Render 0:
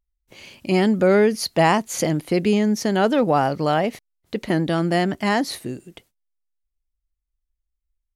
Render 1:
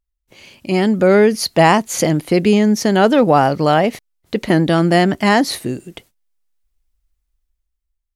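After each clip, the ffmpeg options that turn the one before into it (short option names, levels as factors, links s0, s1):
-af "dynaudnorm=f=140:g=13:m=3.98"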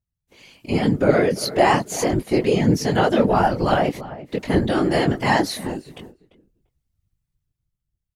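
-filter_complex "[0:a]asplit=2[s0][s1];[s1]adelay=344,lowpass=f=1600:p=1,volume=0.188,asplit=2[s2][s3];[s3]adelay=344,lowpass=f=1600:p=1,volume=0.18[s4];[s0][s2][s4]amix=inputs=3:normalize=0,flanger=delay=19:depth=2.7:speed=2.2,afftfilt=real='hypot(re,im)*cos(2*PI*random(0))':imag='hypot(re,im)*sin(2*PI*random(1))':win_size=512:overlap=0.75,volume=1.5"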